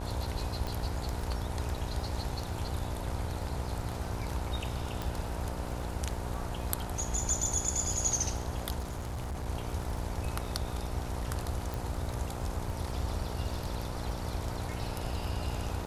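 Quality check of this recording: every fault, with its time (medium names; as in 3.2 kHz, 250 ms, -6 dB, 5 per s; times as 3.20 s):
buzz 60 Hz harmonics 17 -39 dBFS
crackle 12 per s -39 dBFS
0.67 s: pop
5.02 s: pop
8.79–9.47 s: clipped -33 dBFS
11.74 s: pop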